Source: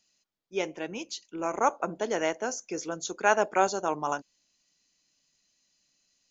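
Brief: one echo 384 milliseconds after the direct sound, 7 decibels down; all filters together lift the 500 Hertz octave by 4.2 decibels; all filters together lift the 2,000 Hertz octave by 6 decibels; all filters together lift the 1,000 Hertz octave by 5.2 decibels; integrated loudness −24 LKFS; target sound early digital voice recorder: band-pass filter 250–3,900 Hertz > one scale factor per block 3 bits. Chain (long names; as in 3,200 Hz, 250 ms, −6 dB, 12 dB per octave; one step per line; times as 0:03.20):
band-pass filter 250–3,900 Hz
parametric band 500 Hz +4 dB
parametric band 1,000 Hz +4 dB
parametric band 2,000 Hz +6.5 dB
single-tap delay 384 ms −7 dB
one scale factor per block 3 bits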